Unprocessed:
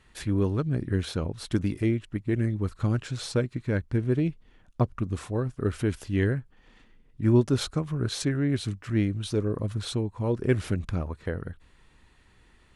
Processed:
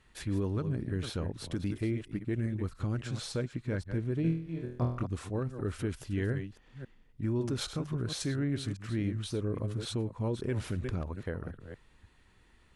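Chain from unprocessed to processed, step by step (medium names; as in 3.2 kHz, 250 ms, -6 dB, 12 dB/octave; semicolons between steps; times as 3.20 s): chunks repeated in reverse 274 ms, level -11 dB; peak limiter -19 dBFS, peak gain reduction 8.5 dB; 4.22–5.03 s: flutter echo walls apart 4.2 m, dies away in 0.54 s; trim -4.5 dB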